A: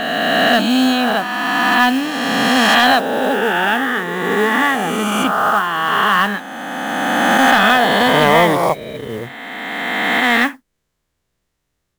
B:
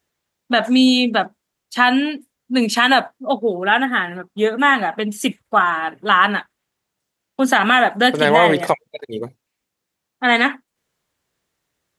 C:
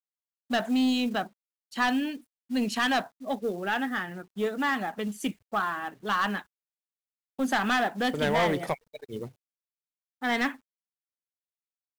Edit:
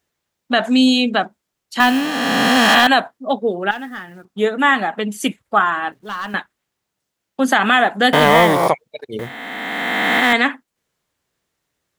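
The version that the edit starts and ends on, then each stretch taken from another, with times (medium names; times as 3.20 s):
B
1.80–2.87 s: from A
3.71–4.25 s: from C
5.92–6.34 s: from C
8.13–8.68 s: from A
9.19–10.33 s: from A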